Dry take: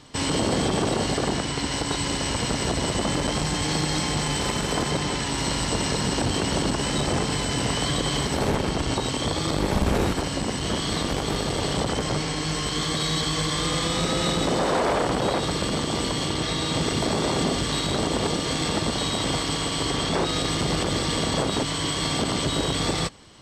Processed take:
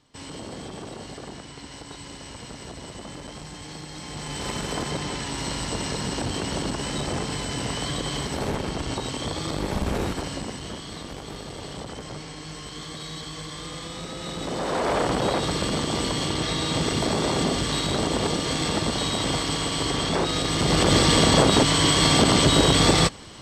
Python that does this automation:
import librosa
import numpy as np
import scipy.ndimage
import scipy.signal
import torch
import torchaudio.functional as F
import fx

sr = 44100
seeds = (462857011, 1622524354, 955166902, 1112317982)

y = fx.gain(x, sr, db=fx.line((3.93, -14.0), (4.52, -4.0), (10.31, -4.0), (10.85, -11.0), (14.19, -11.0), (14.99, 0.0), (20.49, 0.0), (20.93, 7.0)))